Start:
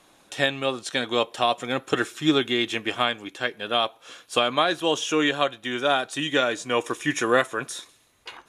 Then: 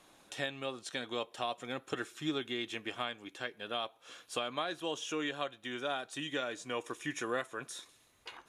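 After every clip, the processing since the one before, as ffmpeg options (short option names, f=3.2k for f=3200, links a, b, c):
-af "acompressor=threshold=-44dB:ratio=1.5,volume=-5dB"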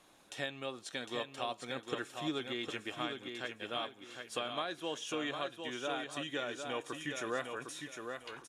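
-af "aecho=1:1:756|1512|2268|3024:0.501|0.14|0.0393|0.011,volume=-2dB"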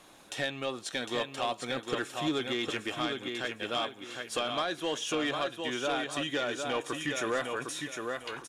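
-af "asoftclip=type=tanh:threshold=-30dB,volume=8dB"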